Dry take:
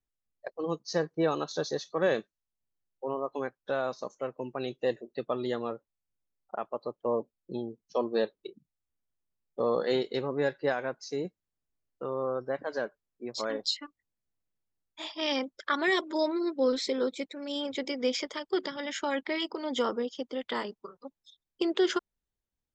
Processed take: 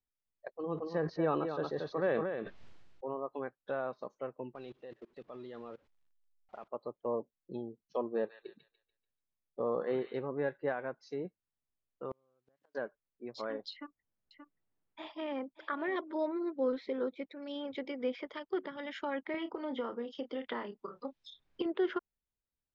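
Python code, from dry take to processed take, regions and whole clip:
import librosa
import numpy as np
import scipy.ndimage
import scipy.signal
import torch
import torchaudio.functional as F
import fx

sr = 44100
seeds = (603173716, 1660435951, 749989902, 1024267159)

y = fx.chain(x, sr, fx.echo_single(ms=230, db=-8.0),
    fx.sustainer(db_per_s=31.0), at=(0.55, 3.07))
y = fx.chain(y, sr, fx.zero_step(step_db=-44.0),
    fx.level_steps(step_db=20),
    fx.upward_expand(threshold_db=-50.0, expansion=1.5), at=(4.55, 6.68))
y = fx.chain(y, sr, fx.high_shelf(hz=4200.0, db=-9.0),
    fx.echo_wet_highpass(ms=145, feedback_pct=34, hz=2000.0, wet_db=-4.0), at=(8.02, 10.14))
y = fx.chain(y, sr, fx.crossing_spikes(level_db=-31.0),
    fx.low_shelf(hz=200.0, db=9.5),
    fx.gate_flip(shuts_db=-25.0, range_db=-40), at=(12.11, 12.75))
y = fx.chain(y, sr, fx.high_shelf(hz=3000.0, db=-11.5),
    fx.echo_single(ms=578, db=-12.5),
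    fx.band_squash(depth_pct=40), at=(13.73, 15.96))
y = fx.chain(y, sr, fx.doubler(ms=30.0, db=-10),
    fx.band_squash(depth_pct=100), at=(19.34, 21.66))
y = scipy.signal.sosfilt(scipy.signal.butter(2, 3400.0, 'lowpass', fs=sr, output='sos'), y)
y = fx.env_lowpass_down(y, sr, base_hz=2300.0, full_db=-29.0)
y = y * librosa.db_to_amplitude(-5.5)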